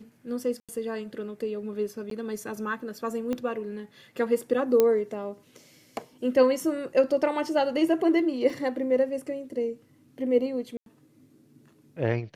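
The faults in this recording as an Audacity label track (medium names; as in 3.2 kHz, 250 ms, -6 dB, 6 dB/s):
0.600000	0.690000	dropout 86 ms
2.100000	2.110000	dropout 13 ms
3.330000	3.330000	pop -18 dBFS
4.800000	4.800000	pop -9 dBFS
8.500000	8.500000	dropout 2.5 ms
10.770000	10.860000	dropout 92 ms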